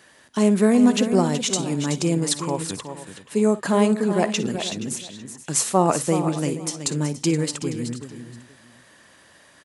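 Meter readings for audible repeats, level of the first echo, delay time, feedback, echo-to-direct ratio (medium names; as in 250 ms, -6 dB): 5, -18.0 dB, 52 ms, no regular repeats, -7.5 dB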